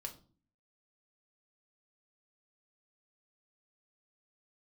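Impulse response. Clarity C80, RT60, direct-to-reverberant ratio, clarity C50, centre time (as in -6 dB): 18.5 dB, no single decay rate, 2.5 dB, 13.5 dB, 11 ms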